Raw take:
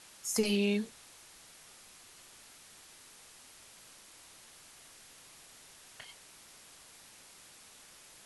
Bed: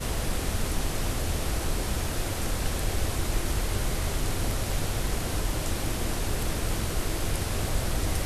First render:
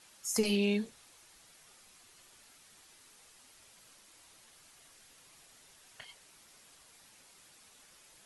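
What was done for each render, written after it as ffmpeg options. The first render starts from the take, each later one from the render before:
-af "afftdn=nr=6:nf=-57"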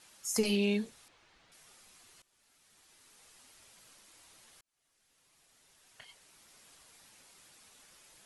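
-filter_complex "[0:a]asettb=1/sr,asplit=3[a][b][c];[a]atrim=end=1.084[d];[b]atrim=start=1.08:end=1.52,asetpts=PTS-STARTPTS,afade=t=in:d=0.004:c=qsin,afade=t=out:st=0.436:d=0.004:c=qsin,lowpass=3.4k[e];[c]atrim=start=1.516[f];[d][e]acrossfade=d=0.004:c1=hsin:c2=qsin[g];[g][f]acrossfade=d=0.004:c1=qsin:c2=hsin,asplit=3[h][i][j];[h]atrim=end=2.22,asetpts=PTS-STARTPTS,afade=t=out:st=2.216:d=0.004:c=hsin:silence=0.11885[k];[i]atrim=start=2.22:end=4.61,asetpts=PTS-STARTPTS,afade=t=in:d=1.12:silence=0.11885,afade=t=out:st=2.386:d=0.004:c=hsin[l];[j]atrim=start=4.61,asetpts=PTS-STARTPTS,afade=t=in:d=2.09[m];[k][l][m]concat=n=3:v=0:a=1"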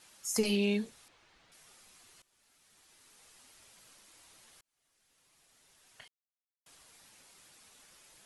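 -filter_complex "[0:a]asplit=3[a][b][c];[a]atrim=end=6.08,asetpts=PTS-STARTPTS,afade=t=out:st=6.076:d=0.004:c=hsin[d];[b]atrim=start=6.08:end=6.66,asetpts=PTS-STARTPTS,volume=0[e];[c]atrim=start=6.66,asetpts=PTS-STARTPTS,afade=t=in:d=0.004:c=hsin[f];[d][e][f]concat=n=3:v=0:a=1"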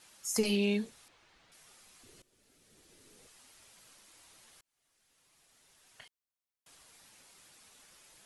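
-filter_complex "[0:a]asettb=1/sr,asplit=3[a][b][c];[a]atrim=end=2.034[d];[b]atrim=start=2.03:end=3.27,asetpts=PTS-STARTPTS,afade=t=in:d=0.004:c=qsin,afade=t=out:st=1.236:d=0.004:c=qsin,lowshelf=f=620:t=q:w=1.5:g=9.5[e];[c]atrim=start=3.266[f];[d][e]acrossfade=d=0.004:c1=hsin:c2=qsin[g];[g][f]acrossfade=d=0.004:c1=qsin:c2=hsin"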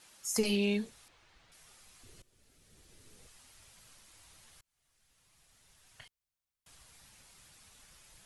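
-af "asubboost=boost=4.5:cutoff=140"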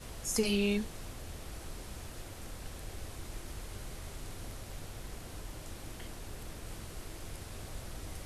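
-filter_complex "[1:a]volume=-16dB[a];[0:a][a]amix=inputs=2:normalize=0"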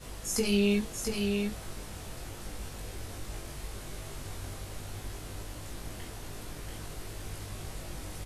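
-filter_complex "[0:a]asplit=2[a][b];[b]adelay=20,volume=-2dB[c];[a][c]amix=inputs=2:normalize=0,asplit=2[d][e];[e]aecho=0:1:685:0.596[f];[d][f]amix=inputs=2:normalize=0"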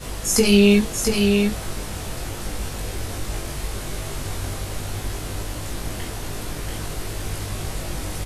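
-af "volume=12dB"

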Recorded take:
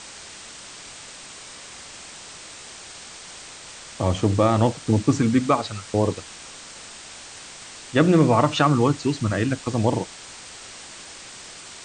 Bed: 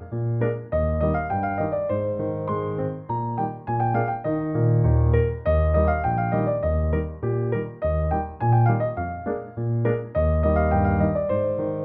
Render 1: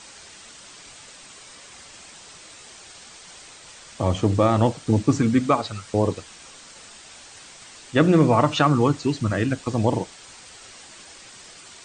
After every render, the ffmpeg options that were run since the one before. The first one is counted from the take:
-af "afftdn=nr=6:nf=-41"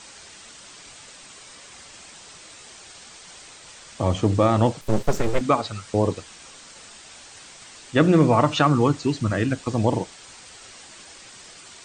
-filter_complex "[0:a]asettb=1/sr,asplit=3[a][b][c];[a]atrim=end=4.814[d];[b]atrim=start=4.81:end=5.41,asetpts=PTS-STARTPTS,afade=t=in:d=0.004:c=qsin,afade=t=out:st=0.596:d=0.004:c=qsin,aeval=exprs='abs(val(0))':c=same[e];[c]atrim=start=5.406[f];[d][e]acrossfade=d=0.004:c1=hsin:c2=qsin[g];[g][f]acrossfade=d=0.004:c1=qsin:c2=hsin"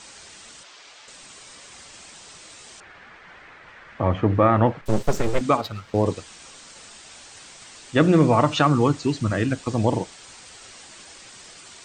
-filter_complex "[0:a]asettb=1/sr,asplit=3[a][b][c];[a]atrim=end=0.634[d];[b]atrim=start=0.63:end=1.08,asetpts=PTS-STARTPTS,afade=t=in:d=0.004:c=qsin,afade=t=out:st=0.446:d=0.004:c=qsin,acrossover=split=370 6400:gain=0.126 1 0.0794[e][f][g];[e][f][g]amix=inputs=3:normalize=0[h];[c]atrim=start=1.076[i];[d][h]acrossfade=d=0.004:c1=hsin:c2=qsin[j];[j][i]acrossfade=d=0.004:c1=qsin:c2=hsin,asettb=1/sr,asplit=3[k][l][m];[k]atrim=end=2.804[n];[l]atrim=start=2.8:end=4.86,asetpts=PTS-STARTPTS,afade=t=in:d=0.004:c=qsin,afade=t=out:st=2.056:d=0.004:c=qsin,lowpass=f=1.8k:t=q:w=2.2[o];[m]atrim=start=4.856[p];[n][o]acrossfade=d=0.004:c1=hsin:c2=qsin[q];[q][p]acrossfade=d=0.004:c1=qsin:c2=hsin,asettb=1/sr,asplit=3[r][s][t];[r]atrim=end=5.574[u];[s]atrim=start=5.57:end=6.06,asetpts=PTS-STARTPTS,afade=t=in:d=0.004:c=qsin,afade=t=out:st=0.486:d=0.004:c=qsin,adynamicsmooth=sensitivity=7:basefreq=2.6k[v];[t]atrim=start=6.056[w];[u][v]acrossfade=d=0.004:c1=hsin:c2=qsin[x];[x][w]acrossfade=d=0.004:c1=qsin:c2=hsin"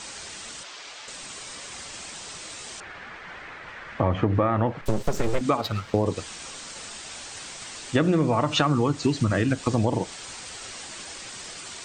-filter_complex "[0:a]asplit=2[a][b];[b]alimiter=limit=-14.5dB:level=0:latency=1:release=133,volume=-1dB[c];[a][c]amix=inputs=2:normalize=0,acompressor=threshold=-18dB:ratio=6"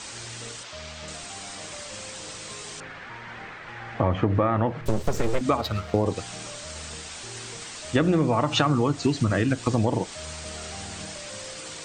-filter_complex "[1:a]volume=-20.5dB[a];[0:a][a]amix=inputs=2:normalize=0"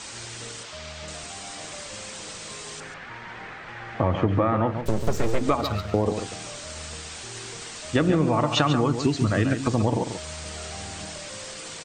-filter_complex "[0:a]asplit=2[a][b];[b]adelay=139.9,volume=-8dB,highshelf=f=4k:g=-3.15[c];[a][c]amix=inputs=2:normalize=0"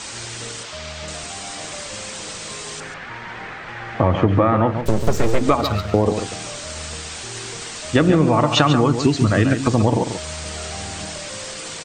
-af "volume=6dB"

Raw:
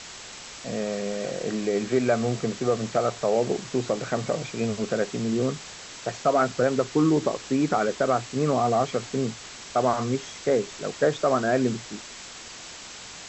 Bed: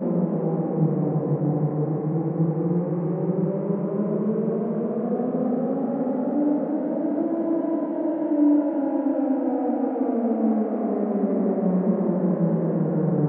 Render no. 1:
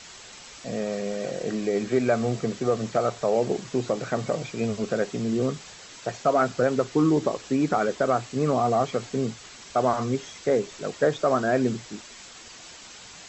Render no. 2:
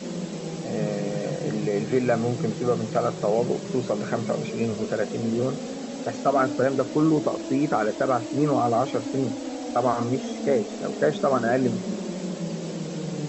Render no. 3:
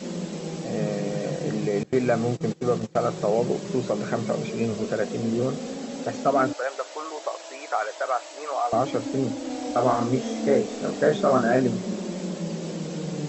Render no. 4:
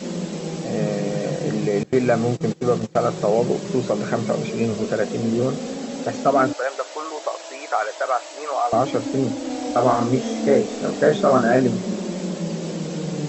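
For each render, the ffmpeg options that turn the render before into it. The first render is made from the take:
-af "afftdn=nr=6:nf=-42"
-filter_complex "[1:a]volume=-9dB[a];[0:a][a]amix=inputs=2:normalize=0"
-filter_complex "[0:a]asettb=1/sr,asplit=3[a][b][c];[a]atrim=end=1.834[d];[b]atrim=start=1.83:end=3.03,asetpts=PTS-STARTPTS,afade=t=in:d=0.004:c=qsin,afade=t=out:st=1.196:d=0.004:c=qsin,agate=range=-21dB:threshold=-28dB:ratio=16:release=100:detection=peak[e];[c]atrim=start=3.026[f];[d][e]acrossfade=d=0.004:c1=hsin:c2=qsin[g];[g][f]acrossfade=d=0.004:c1=qsin:c2=hsin,asettb=1/sr,asplit=3[h][i][j];[h]atrim=end=6.534[k];[i]atrim=start=6.53:end=8.73,asetpts=PTS-STARTPTS,afade=t=in:d=0.004:c=qsin,afade=t=out:st=2.196:d=0.004:c=qsin,highpass=f=620:w=0.5412,highpass=f=620:w=1.3066[l];[j]atrim=start=8.726[m];[k][l]acrossfade=d=0.004:c1=hsin:c2=qsin[n];[n][m]acrossfade=d=0.004:c1=qsin:c2=hsin,asettb=1/sr,asplit=3[o][p][q];[o]atrim=end=9.474[r];[p]atrim=start=9.47:end=11.62,asetpts=PTS-STARTPTS,afade=t=in:d=0.004:c=qsin,afade=t=out:st=2.146:d=0.004:c=qsin,asplit=2[s][t];[t]adelay=31,volume=-4dB[u];[s][u]amix=inputs=2:normalize=0,atrim=end_sample=94815[v];[q]atrim=start=11.616[w];[r][v]acrossfade=d=0.004:c1=hsin:c2=qsin[x];[x][w]acrossfade=d=0.004:c1=qsin:c2=hsin"
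-af "volume=4dB"

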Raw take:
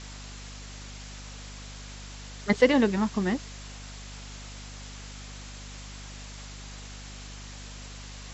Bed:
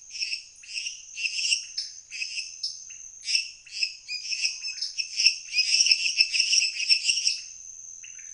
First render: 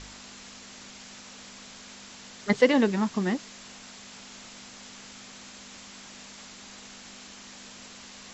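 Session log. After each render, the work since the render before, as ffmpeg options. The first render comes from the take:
-af "bandreject=f=50:t=h:w=4,bandreject=f=100:t=h:w=4,bandreject=f=150:t=h:w=4"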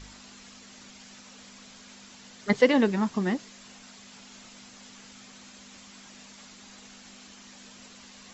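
-af "afftdn=nr=6:nf=-47"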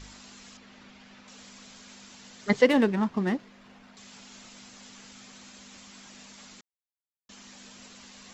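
-filter_complex "[0:a]asettb=1/sr,asplit=3[a][b][c];[a]atrim=end=0.574[d];[b]atrim=start=0.57:end=1.28,asetpts=PTS-STARTPTS,afade=t=in:d=0.004:c=qsin,afade=t=out:st=0.706:d=0.004:c=qsin,lowpass=3.1k[e];[c]atrim=start=1.276[f];[d][e]acrossfade=d=0.004:c1=hsin:c2=qsin[g];[g][f]acrossfade=d=0.004:c1=qsin:c2=hsin,asettb=1/sr,asplit=3[h][i][j];[h]atrim=end=2.664[k];[i]atrim=start=2.66:end=3.97,asetpts=PTS-STARTPTS,afade=t=in:d=0.004:c=qsin,afade=t=out:st=1.306:d=0.004:c=qsin,adynamicsmooth=sensitivity=6.5:basefreq=2.2k[l];[j]atrim=start=3.966[m];[k][l]acrossfade=d=0.004:c1=hsin:c2=qsin[n];[n][m]acrossfade=d=0.004:c1=qsin:c2=hsin,asplit=3[o][p][q];[o]atrim=end=6.61,asetpts=PTS-STARTPTS,afade=t=out:st=6.606:d=0.004:c=hsin[r];[p]atrim=start=6.61:end=7.29,asetpts=PTS-STARTPTS,volume=0[s];[q]atrim=start=7.29,asetpts=PTS-STARTPTS,afade=t=in:d=0.004:c=hsin[t];[r][s][t]concat=n=3:v=0:a=1"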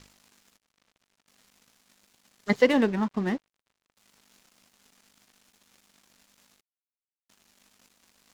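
-af "aeval=exprs='sgn(val(0))*max(abs(val(0))-0.00531,0)':c=same"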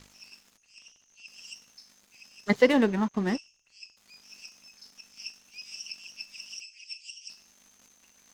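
-filter_complex "[1:a]volume=-20.5dB[a];[0:a][a]amix=inputs=2:normalize=0"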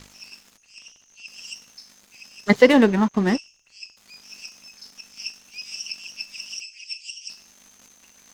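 -af "volume=7.5dB,alimiter=limit=-1dB:level=0:latency=1"

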